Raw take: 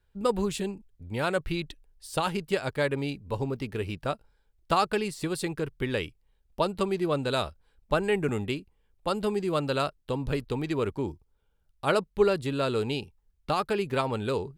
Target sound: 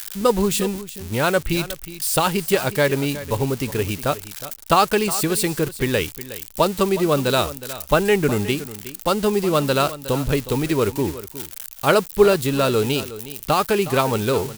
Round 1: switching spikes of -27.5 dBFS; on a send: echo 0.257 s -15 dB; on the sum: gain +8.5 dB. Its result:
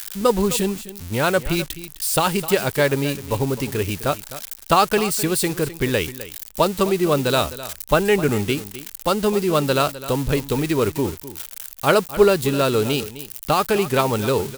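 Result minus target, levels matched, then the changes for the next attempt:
echo 0.107 s early
change: echo 0.364 s -15 dB

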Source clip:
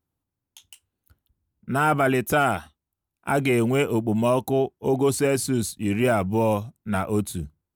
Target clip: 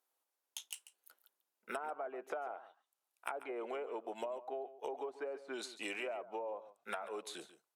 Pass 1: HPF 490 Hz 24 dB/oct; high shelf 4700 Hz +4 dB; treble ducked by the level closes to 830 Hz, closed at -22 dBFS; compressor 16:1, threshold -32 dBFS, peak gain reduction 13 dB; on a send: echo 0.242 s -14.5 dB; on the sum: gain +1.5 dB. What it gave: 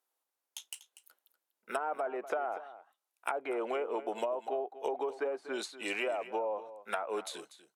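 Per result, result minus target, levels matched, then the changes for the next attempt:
echo 0.101 s late; compressor: peak gain reduction -7.5 dB
change: echo 0.141 s -14.5 dB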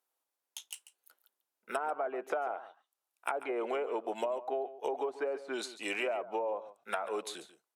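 compressor: peak gain reduction -7.5 dB
change: compressor 16:1, threshold -40 dBFS, peak gain reduction 20.5 dB

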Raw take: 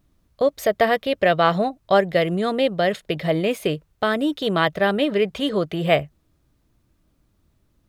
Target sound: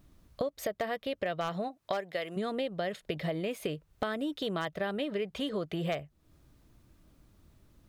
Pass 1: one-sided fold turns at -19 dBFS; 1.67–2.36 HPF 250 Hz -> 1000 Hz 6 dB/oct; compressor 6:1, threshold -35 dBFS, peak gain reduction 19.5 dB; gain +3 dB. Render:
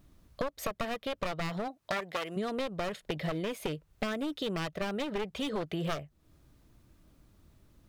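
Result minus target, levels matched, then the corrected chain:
one-sided fold: distortion +21 dB
one-sided fold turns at -8 dBFS; 1.67–2.36 HPF 250 Hz -> 1000 Hz 6 dB/oct; compressor 6:1, threshold -35 dBFS, peak gain reduction 20.5 dB; gain +3 dB

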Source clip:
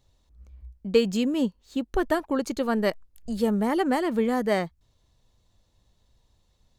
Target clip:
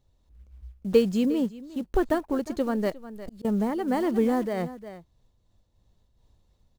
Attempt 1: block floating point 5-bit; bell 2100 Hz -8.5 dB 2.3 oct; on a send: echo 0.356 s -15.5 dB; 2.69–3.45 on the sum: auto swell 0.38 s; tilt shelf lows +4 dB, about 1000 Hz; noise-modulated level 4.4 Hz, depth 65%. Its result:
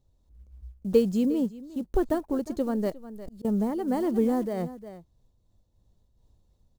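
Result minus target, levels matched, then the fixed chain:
2000 Hz band -7.0 dB
block floating point 5-bit; on a send: echo 0.356 s -15.5 dB; 2.69–3.45 on the sum: auto swell 0.38 s; tilt shelf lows +4 dB, about 1000 Hz; noise-modulated level 4.4 Hz, depth 65%

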